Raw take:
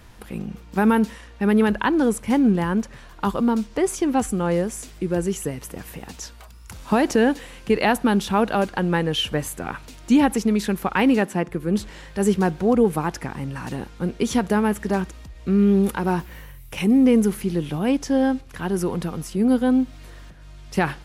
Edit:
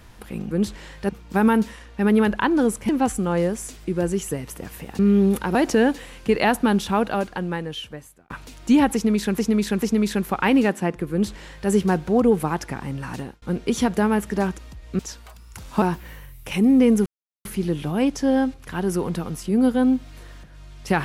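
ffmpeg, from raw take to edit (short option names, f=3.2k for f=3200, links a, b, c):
-filter_complex "[0:a]asplit=13[a][b][c][d][e][f][g][h][i][j][k][l][m];[a]atrim=end=0.512[n];[b]atrim=start=11.638:end=12.222[o];[c]atrim=start=0.508:end=2.312[p];[d]atrim=start=4.028:end=6.132[q];[e]atrim=start=15.518:end=16.082[r];[f]atrim=start=6.958:end=9.71,asetpts=PTS-STARTPTS,afade=t=out:st=1.212:d=1.54[s];[g]atrim=start=9.71:end=10.792,asetpts=PTS-STARTPTS,afade=t=in:d=0.004:c=hsin[t];[h]atrim=start=10.348:end=10.792[u];[i]atrim=start=10.348:end=13.95,asetpts=PTS-STARTPTS,afade=t=out:st=3.332:d=0.27[v];[j]atrim=start=13.95:end=15.522,asetpts=PTS-STARTPTS,afade=t=in:d=0.004:c=hsin[w];[k]atrim=start=6.128:end=6.962[x];[l]atrim=start=16.078:end=17.32,asetpts=PTS-STARTPTS,afade=t=out:st=1.238:d=0.004:c=hsin,apad=pad_dur=0.39[y];[m]atrim=start=17.32,asetpts=PTS-STARTPTS,afade=t=in:d=0.004:c=hsin[z];[n][o]acrossfade=d=0.004:c1=hsin:c2=hsin[aa];[aa][p]acrossfade=d=0.004:c1=hsin:c2=hsin[ab];[ab][q]acrossfade=d=0.004:c1=hsin:c2=hsin[ac];[ac][r]acrossfade=d=0.004:c1=hsin:c2=hsin[ad];[s][t]concat=n=2:v=0:a=1[ae];[ad][ae]acrossfade=d=0.004:c1=hsin:c2=hsin[af];[af][u]acrossfade=d=0.004:c1=hsin:c2=hsin[ag];[v][w]concat=n=2:v=0:a=1[ah];[ag][ah]acrossfade=d=0.004:c1=hsin:c2=hsin[ai];[ai][x]acrossfade=d=0.004:c1=hsin:c2=hsin[aj];[y][z]concat=n=2:v=0:a=1[ak];[aj][ak]acrossfade=d=0.004:c1=hsin:c2=hsin"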